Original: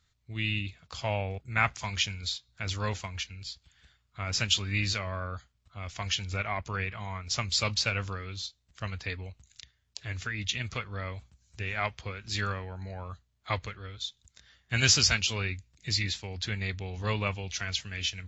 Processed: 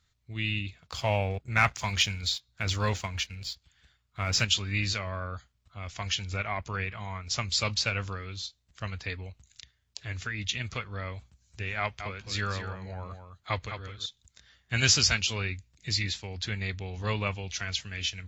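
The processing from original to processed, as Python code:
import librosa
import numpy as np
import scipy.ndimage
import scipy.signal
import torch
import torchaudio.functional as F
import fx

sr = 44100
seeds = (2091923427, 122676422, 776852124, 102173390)

y = fx.leveller(x, sr, passes=1, at=(0.8, 4.45))
y = fx.echo_single(y, sr, ms=210, db=-8.5, at=(11.79, 14.06))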